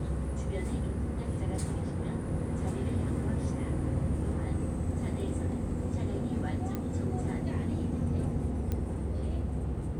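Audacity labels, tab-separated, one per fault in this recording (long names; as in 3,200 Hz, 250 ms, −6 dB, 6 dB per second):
6.750000	6.750000	click −21 dBFS
8.720000	8.720000	click −20 dBFS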